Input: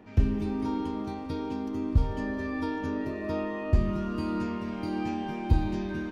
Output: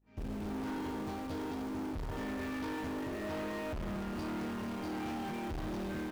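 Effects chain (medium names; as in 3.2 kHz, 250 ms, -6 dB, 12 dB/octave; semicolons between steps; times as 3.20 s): fade-in on the opening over 0.62 s; valve stage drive 40 dB, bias 0.35; hum 50 Hz, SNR 32 dB; in parallel at -9 dB: bit crusher 7-bit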